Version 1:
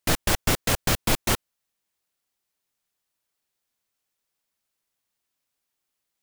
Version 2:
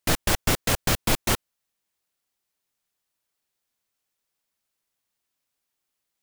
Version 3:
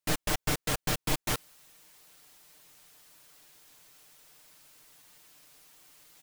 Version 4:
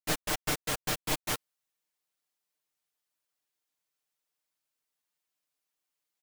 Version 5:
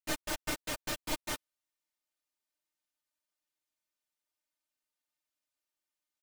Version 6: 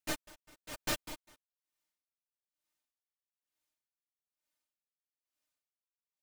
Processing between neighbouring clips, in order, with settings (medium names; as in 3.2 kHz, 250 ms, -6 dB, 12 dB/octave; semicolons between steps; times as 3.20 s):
no audible change
comb 6.6 ms, depth 66%; reverse; upward compressor, threshold -25 dBFS; reverse; trim -8.5 dB
bass shelf 200 Hz -7.5 dB; upward expansion 2.5:1, over -48 dBFS; trim +2 dB
treble shelf 12 kHz -5 dB; comb 3.3 ms, depth 49%; trim -5 dB
logarithmic tremolo 1.1 Hz, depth 30 dB; trim +3 dB